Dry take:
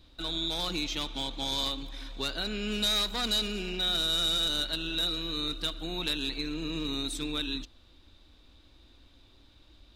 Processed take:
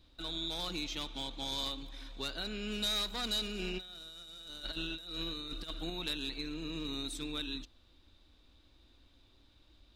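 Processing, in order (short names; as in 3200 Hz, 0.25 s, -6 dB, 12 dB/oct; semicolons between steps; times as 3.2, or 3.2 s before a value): 3.59–5.9 negative-ratio compressor -35 dBFS, ratio -0.5; gain -6 dB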